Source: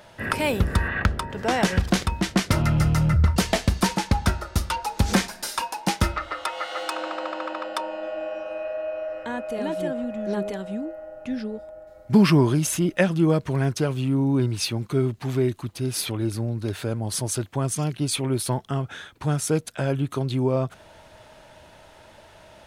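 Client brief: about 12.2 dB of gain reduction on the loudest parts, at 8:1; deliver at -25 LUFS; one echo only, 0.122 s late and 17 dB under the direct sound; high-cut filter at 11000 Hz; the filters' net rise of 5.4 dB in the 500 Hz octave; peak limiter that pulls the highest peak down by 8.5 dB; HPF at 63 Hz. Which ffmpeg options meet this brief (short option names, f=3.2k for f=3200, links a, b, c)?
-af "highpass=63,lowpass=11k,equalizer=f=500:t=o:g=7,acompressor=threshold=-23dB:ratio=8,alimiter=limit=-18.5dB:level=0:latency=1,aecho=1:1:122:0.141,volume=5dB"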